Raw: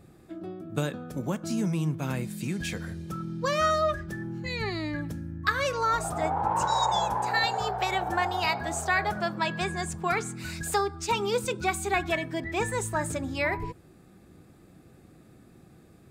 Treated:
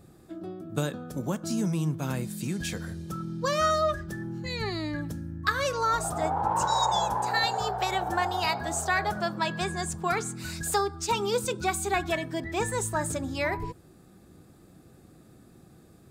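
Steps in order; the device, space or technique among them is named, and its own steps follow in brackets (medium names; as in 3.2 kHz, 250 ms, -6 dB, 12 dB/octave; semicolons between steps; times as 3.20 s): exciter from parts (in parallel at -6 dB: high-pass 2.1 kHz 24 dB/octave + saturation -25.5 dBFS, distortion -18 dB)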